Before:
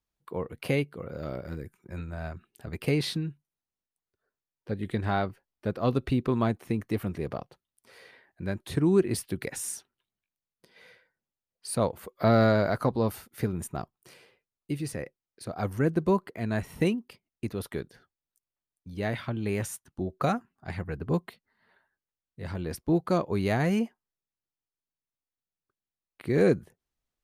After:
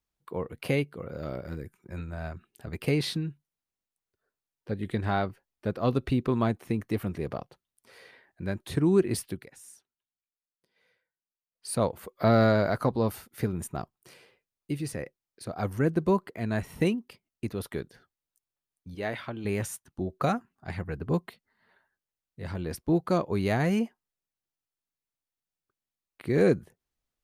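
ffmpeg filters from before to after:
ffmpeg -i in.wav -filter_complex "[0:a]asettb=1/sr,asplit=3[link_01][link_02][link_03];[link_01]atrim=end=18.954[link_04];[link_02]atrim=start=18.95:end=19.45,asetpts=PTS-STARTPTS,afade=type=in:duration=0.004:curve=qsin,afade=type=out:start_time=0.496:duration=0.004:curve=qsin,bass=frequency=250:gain=-9,treble=frequency=4000:gain=-3[link_05];[link_03]atrim=start=19.446[link_06];[link_04][link_05]acrossfade=duration=0.004:curve1=hsin:curve2=qsin[link_07];[link_07][link_06]acrossfade=duration=0.004:curve1=qsin:curve2=hsin,asplit=3[link_08][link_09][link_10];[link_08]atrim=end=9.45,asetpts=PTS-STARTPTS,afade=type=out:start_time=9.27:duration=0.18:silence=0.16788[link_11];[link_09]atrim=start=9.45:end=11.51,asetpts=PTS-STARTPTS,volume=-15.5dB[link_12];[link_10]atrim=start=11.51,asetpts=PTS-STARTPTS,afade=type=in:duration=0.18:silence=0.16788[link_13];[link_11][link_12][link_13]concat=n=3:v=0:a=1" out.wav

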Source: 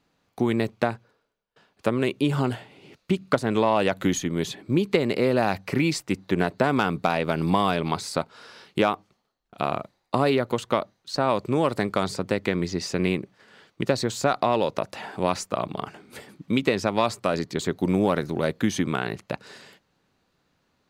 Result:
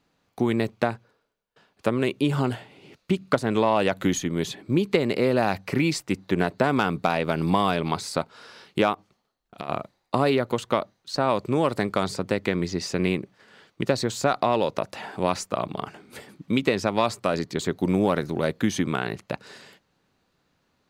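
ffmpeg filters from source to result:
ffmpeg -i in.wav -filter_complex "[0:a]asplit=3[link_01][link_02][link_03];[link_01]afade=type=out:start_time=8.93:duration=0.02[link_04];[link_02]acompressor=threshold=-30dB:ratio=6:attack=3.2:release=140:knee=1:detection=peak,afade=type=in:start_time=8.93:duration=0.02,afade=type=out:start_time=9.68:duration=0.02[link_05];[link_03]afade=type=in:start_time=9.68:duration=0.02[link_06];[link_04][link_05][link_06]amix=inputs=3:normalize=0" out.wav

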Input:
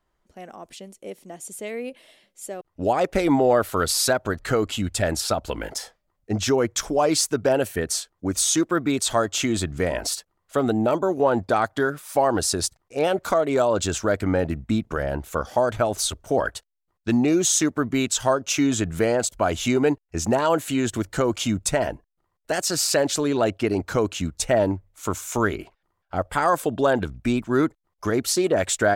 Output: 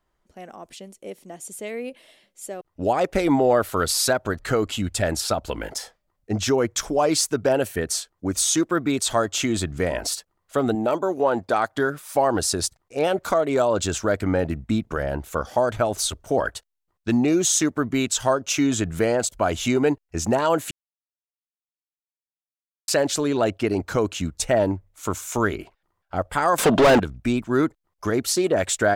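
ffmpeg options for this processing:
ffmpeg -i in.wav -filter_complex "[0:a]asettb=1/sr,asplit=3[link_01][link_02][link_03];[link_01]atrim=end=10.754[link_04];[link_02]atrim=start=10.75:end=11.75,asetpts=PTS-STARTPTS,afade=type=in:duration=0.004:curve=qsin,afade=type=out:start_time=0.996:duration=0.004:curve=qsin,lowshelf=frequency=150:gain=-11.5[link_05];[link_03]atrim=start=11.746[link_06];[link_04][link_05]acrossfade=duration=0.004:curve1=hsin:curve2=qsin[link_07];[link_07][link_06]acrossfade=duration=0.004:curve1=qsin:curve2=hsin,asettb=1/sr,asplit=3[link_08][link_09][link_10];[link_08]atrim=end=26.584[link_11];[link_09]atrim=start=26.58:end=27,asetpts=PTS-STARTPTS,afade=type=in:duration=0.004:curve=qsin,afade=type=out:start_time=0.416:duration=0.004:curve=qsin,asplit=2[link_12][link_13];[link_13]highpass=frequency=720:poles=1,volume=31dB,asoftclip=type=tanh:threshold=-8dB[link_14];[link_12][link_14]amix=inputs=2:normalize=0,lowpass=frequency=3300:poles=1,volume=-6dB[link_15];[link_10]atrim=start=26.996[link_16];[link_11][link_15]acrossfade=duration=0.004:curve1=hsin:curve2=qsin[link_17];[link_17][link_16]acrossfade=duration=0.004:curve1=qsin:curve2=hsin,asplit=3[link_18][link_19][link_20];[link_18]atrim=end=20.71,asetpts=PTS-STARTPTS,afade=type=out:start_time=20.706:duration=0.004:curve=hsin[link_21];[link_19]atrim=start=20.71:end=22.88,asetpts=PTS-STARTPTS,volume=0[link_22];[link_20]atrim=start=22.88,asetpts=PTS-STARTPTS,afade=type=in:duration=0.004:curve=hsin[link_23];[link_21][link_22][link_23]concat=n=3:v=0:a=1" out.wav

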